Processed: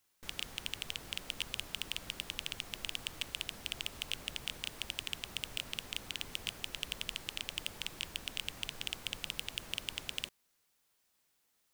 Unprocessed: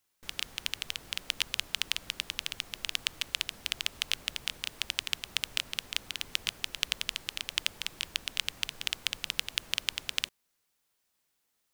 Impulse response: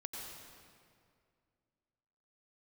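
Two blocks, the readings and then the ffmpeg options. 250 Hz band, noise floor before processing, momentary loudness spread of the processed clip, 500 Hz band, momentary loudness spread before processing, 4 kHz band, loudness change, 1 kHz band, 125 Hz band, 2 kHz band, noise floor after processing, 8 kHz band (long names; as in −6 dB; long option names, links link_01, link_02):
+1.5 dB, −78 dBFS, 2 LU, +0.5 dB, 4 LU, −6.5 dB, −6.5 dB, −4.0 dB, +1.5 dB, −6.5 dB, −76 dBFS, −6.5 dB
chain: -af "asoftclip=type=tanh:threshold=-22dB,volume=1.5dB"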